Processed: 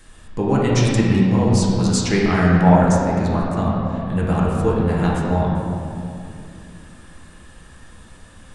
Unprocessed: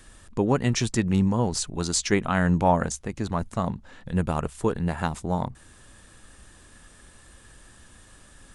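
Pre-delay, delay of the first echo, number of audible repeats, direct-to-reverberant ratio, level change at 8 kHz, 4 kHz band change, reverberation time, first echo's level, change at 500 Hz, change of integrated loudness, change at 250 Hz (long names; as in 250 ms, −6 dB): 4 ms, no echo audible, no echo audible, −5.5 dB, +1.0 dB, +4.0 dB, 2.6 s, no echo audible, +7.5 dB, +7.5 dB, +8.5 dB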